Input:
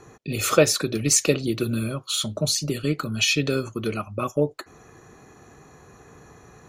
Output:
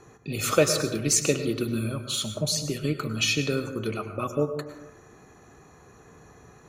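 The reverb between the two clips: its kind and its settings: plate-style reverb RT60 1 s, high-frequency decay 0.35×, pre-delay 90 ms, DRR 8 dB; trim -3.5 dB

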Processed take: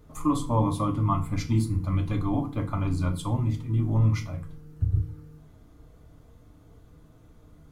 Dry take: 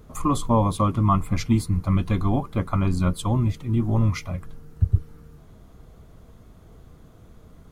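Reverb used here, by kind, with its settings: FDN reverb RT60 0.36 s, low-frequency decay 1.55×, high-frequency decay 0.85×, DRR 3 dB; trim -7 dB

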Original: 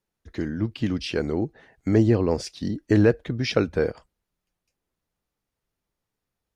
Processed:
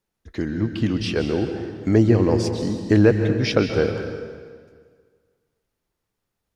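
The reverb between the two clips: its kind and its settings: plate-style reverb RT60 1.8 s, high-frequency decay 0.85×, pre-delay 120 ms, DRR 6 dB; trim +2.5 dB

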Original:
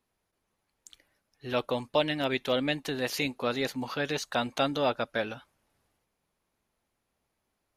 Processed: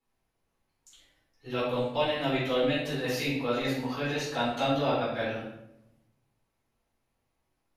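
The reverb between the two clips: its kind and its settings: simulated room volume 240 m³, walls mixed, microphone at 4.1 m; trim -12 dB

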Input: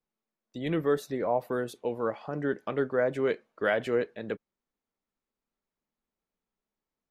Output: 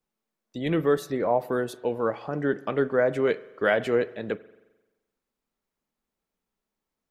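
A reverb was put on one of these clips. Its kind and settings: spring tank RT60 1.1 s, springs 43 ms, chirp 70 ms, DRR 17.5 dB; trim +4 dB

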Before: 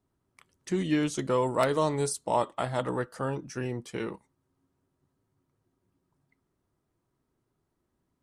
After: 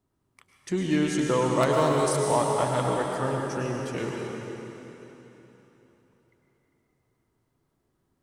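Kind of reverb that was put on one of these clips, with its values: plate-style reverb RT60 3.6 s, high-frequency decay 0.95×, pre-delay 90 ms, DRR -0.5 dB; trim +1 dB

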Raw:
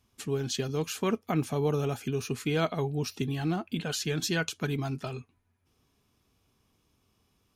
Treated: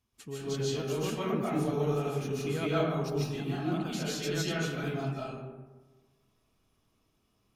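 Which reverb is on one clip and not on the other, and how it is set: algorithmic reverb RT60 1.3 s, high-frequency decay 0.4×, pre-delay 105 ms, DRR -8 dB; trim -10 dB

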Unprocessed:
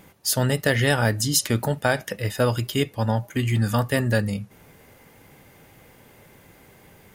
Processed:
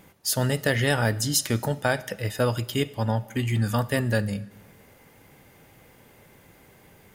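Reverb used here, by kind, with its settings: algorithmic reverb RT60 1.2 s, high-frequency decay 0.95×, pre-delay 10 ms, DRR 19 dB; trim -2.5 dB

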